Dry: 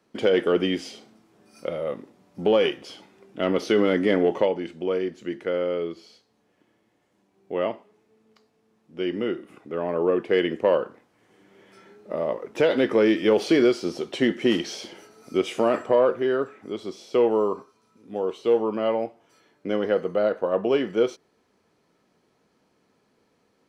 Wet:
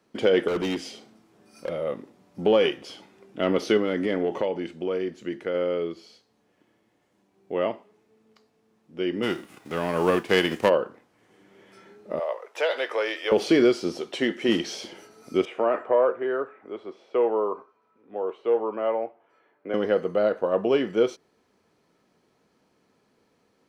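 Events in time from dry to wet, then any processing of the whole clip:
0.48–1.69 overloaded stage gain 23 dB
3.77–5.55 compressor 2:1, threshold -24 dBFS
9.22–10.68 spectral whitening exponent 0.6
12.19–13.32 HPF 560 Hz 24 dB/oct
13.98–14.49 low shelf 220 Hz -11 dB
15.45–19.74 three-band isolator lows -14 dB, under 370 Hz, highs -24 dB, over 2400 Hz

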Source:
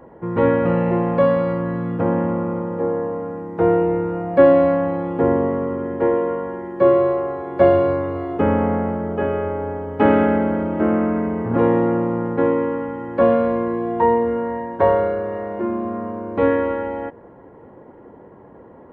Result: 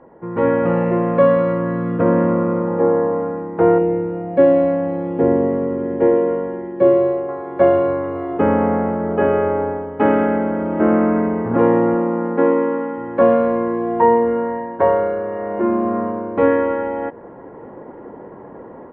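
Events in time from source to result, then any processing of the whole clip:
0.85–2.68 Butterworth band-stop 810 Hz, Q 5.6
3.78–7.29 bell 1200 Hz -10 dB 1.2 oct
11.94–12.97 brick-wall FIR high-pass 150 Hz
whole clip: LPF 2500 Hz 12 dB/oct; bell 73 Hz -8 dB 1.7 oct; AGC gain up to 9.5 dB; gain -1.5 dB

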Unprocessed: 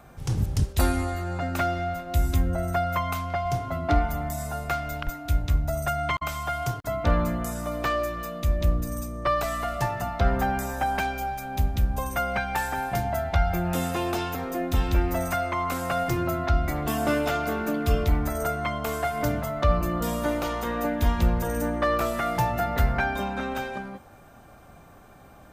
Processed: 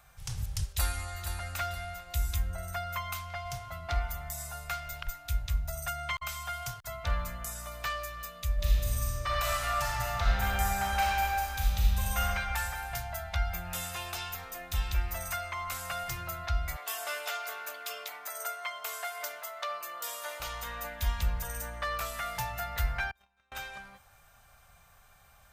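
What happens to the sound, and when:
0.65–1.27 echo throw 0.47 s, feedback 35%, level -8 dB
8.54–12.24 reverb throw, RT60 2.6 s, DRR -6 dB
16.76–20.4 HPF 390 Hz 24 dB/oct
23.11–23.52 gate -25 dBFS, range -33 dB
whole clip: passive tone stack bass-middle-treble 10-0-10

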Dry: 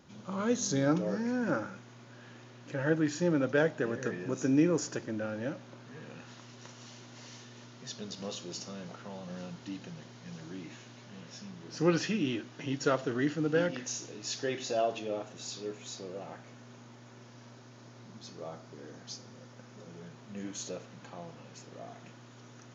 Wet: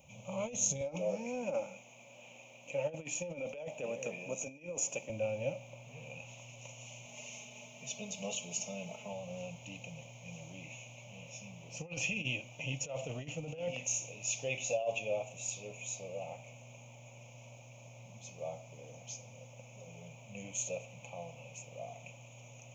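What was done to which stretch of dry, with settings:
0.81–5.1 HPF 180 Hz 24 dB/oct
7.05–9.13 comb 4.7 ms, depth 85%
whole clip: negative-ratio compressor -31 dBFS, ratio -0.5; EQ curve 130 Hz 0 dB, 370 Hz -19 dB, 550 Hz +4 dB, 910 Hz -3 dB, 1700 Hz -30 dB, 2400 Hz +11 dB, 4600 Hz -17 dB, 6700 Hz +6 dB, 9500 Hz +9 dB; gain -1.5 dB

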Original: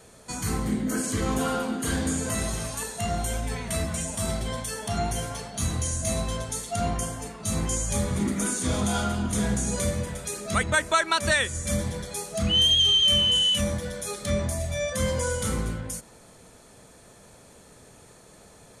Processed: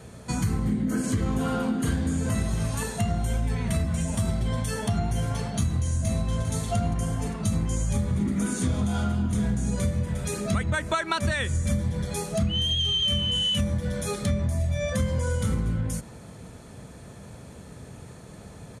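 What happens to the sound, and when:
5.92–6.53 echo throw 0.4 s, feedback 35%, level -11 dB
whole clip: HPF 57 Hz; tone controls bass +11 dB, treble -5 dB; compressor 6:1, threshold -26 dBFS; gain +3.5 dB

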